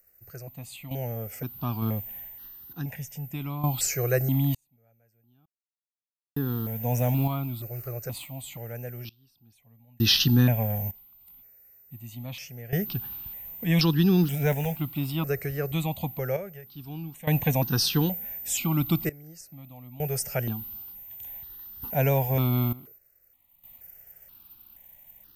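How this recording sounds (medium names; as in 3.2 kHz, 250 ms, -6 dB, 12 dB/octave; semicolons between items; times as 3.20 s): a quantiser's noise floor 10-bit, dither triangular; random-step tremolo 1.1 Hz, depth 100%; notches that jump at a steady rate 2.1 Hz 940–2200 Hz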